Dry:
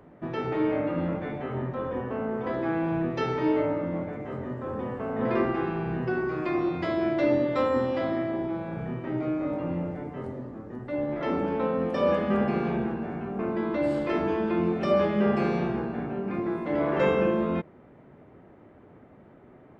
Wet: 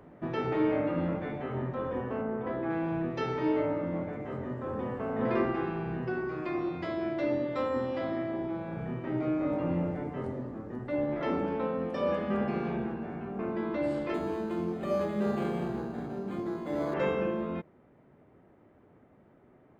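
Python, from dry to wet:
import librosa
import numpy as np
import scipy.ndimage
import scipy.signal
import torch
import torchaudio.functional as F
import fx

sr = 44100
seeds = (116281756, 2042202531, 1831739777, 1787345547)

y = fx.air_absorb(x, sr, metres=280.0, at=(2.21, 2.69), fade=0.02)
y = fx.resample_linear(y, sr, factor=8, at=(14.14, 16.94))
y = fx.rider(y, sr, range_db=10, speed_s=2.0)
y = F.gain(torch.from_numpy(y), -5.0).numpy()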